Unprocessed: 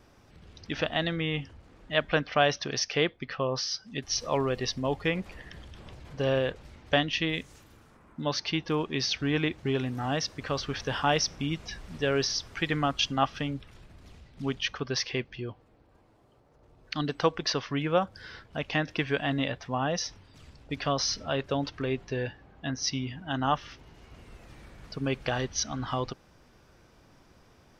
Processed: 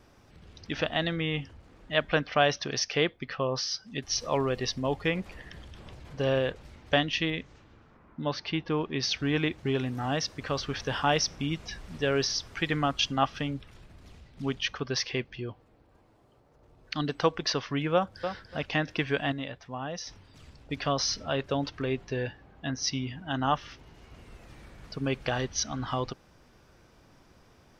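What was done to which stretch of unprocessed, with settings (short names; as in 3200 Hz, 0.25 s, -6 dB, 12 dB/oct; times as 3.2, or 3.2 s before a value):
7.3–9.03 air absorption 170 m
17.94–18.36 echo throw 0.29 s, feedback 15%, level -8 dB
19.32–20.07 gain -7 dB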